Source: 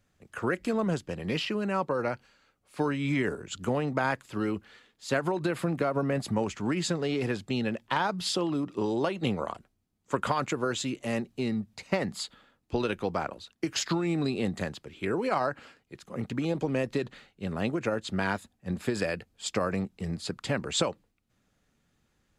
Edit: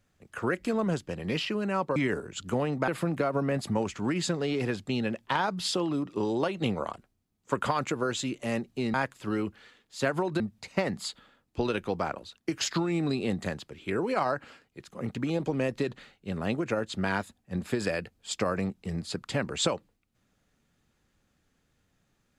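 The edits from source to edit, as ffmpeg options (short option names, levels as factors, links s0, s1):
-filter_complex "[0:a]asplit=5[s0][s1][s2][s3][s4];[s0]atrim=end=1.962[s5];[s1]atrim=start=3.108:end=4.032[s6];[s2]atrim=start=5.488:end=11.552[s7];[s3]atrim=start=4.028:end=5.492[s8];[s4]atrim=start=11.548[s9];[s5][s6]acrossfade=d=0.004:c1=hsin:c2=hsin[s10];[s10][s7]acrossfade=d=0.004:c1=hsin:c2=hsin[s11];[s11][s8]acrossfade=d=0.004:c1=hsin:c2=hsin[s12];[s12][s9]acrossfade=d=0.004:c1=hsin:c2=hsin"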